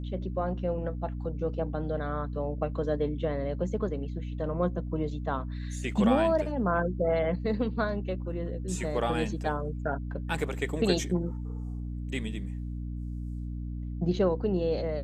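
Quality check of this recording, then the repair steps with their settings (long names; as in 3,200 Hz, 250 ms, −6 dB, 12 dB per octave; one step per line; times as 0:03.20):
mains hum 60 Hz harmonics 5 −35 dBFS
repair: hum removal 60 Hz, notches 5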